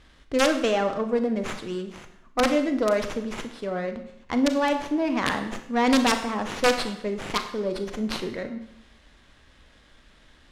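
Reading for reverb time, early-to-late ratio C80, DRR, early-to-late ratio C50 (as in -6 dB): 0.80 s, 12.0 dB, 7.0 dB, 9.5 dB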